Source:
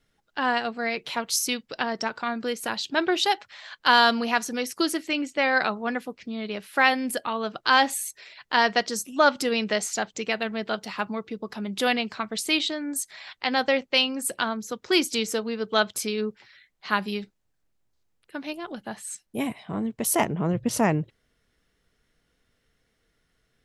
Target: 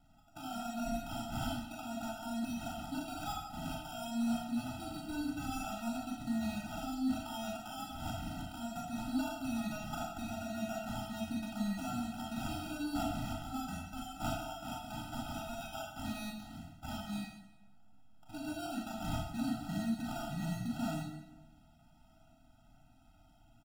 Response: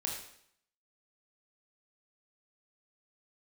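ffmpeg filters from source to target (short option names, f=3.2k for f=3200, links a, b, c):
-filter_complex "[0:a]acrossover=split=3700[a][b];[b]acompressor=threshold=-41dB:ratio=4:attack=1:release=60[c];[a][c]amix=inputs=2:normalize=0,asettb=1/sr,asplit=3[d][e][f];[d]atrim=end=13.654[g];[e]atrim=start=13.65:end=15.89,asetpts=PTS-STARTPTS,afade=t=in:d=0.004:c=qsin,afade=t=out:st=2.236:d=0.004:c=qsin,highpass=860[h];[f]atrim=start=15.886[i];[g][h]acrossfade=d=0.004:c1=hsin:c2=qsin[j];[j][i]acrossfade=d=0.004:c1=qsin:c2=hsin,acompressor=threshold=-34dB:ratio=12,alimiter=level_in=8dB:limit=-24dB:level=0:latency=1:release=416,volume=-8dB,asoftclip=type=hard:threshold=-38dB,aexciter=amount=2.4:drive=5.8:freq=7.1k,acrusher=samples=21:mix=1:aa=0.000001,asplit=2[k][l];[l]adelay=249,lowpass=f=2k:p=1,volume=-23dB,asplit=2[m][n];[n]adelay=249,lowpass=f=2k:p=1,volume=0.53,asplit=2[o][p];[p]adelay=249,lowpass=f=2k:p=1,volume=0.53,asplit=2[q][r];[r]adelay=249,lowpass=f=2k:p=1,volume=0.53[s];[k][m][o][q][s]amix=inputs=5:normalize=0[t];[1:a]atrim=start_sample=2205,asetrate=35721,aresample=44100[u];[t][u]afir=irnorm=-1:irlink=0,afftfilt=real='re*eq(mod(floor(b*sr/1024/310),2),0)':imag='im*eq(mod(floor(b*sr/1024/310),2),0)':win_size=1024:overlap=0.75,volume=3.5dB"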